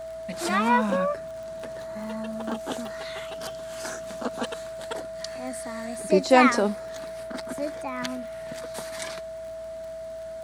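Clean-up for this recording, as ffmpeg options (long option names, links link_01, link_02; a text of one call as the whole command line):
ffmpeg -i in.wav -af "adeclick=threshold=4,bandreject=frequency=58.4:width_type=h:width=4,bandreject=frequency=116.8:width_type=h:width=4,bandreject=frequency=175.2:width_type=h:width=4,bandreject=frequency=650:width=30" out.wav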